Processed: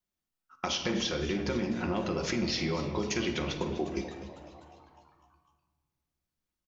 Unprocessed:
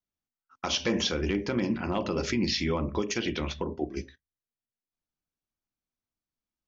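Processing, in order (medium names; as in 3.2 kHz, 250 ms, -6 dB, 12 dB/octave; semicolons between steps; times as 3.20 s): compression, threshold -31 dBFS, peak gain reduction 9 dB; frequency-shifting echo 251 ms, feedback 59%, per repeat +130 Hz, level -15 dB; simulated room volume 1400 m³, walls mixed, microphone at 0.96 m; trim +2 dB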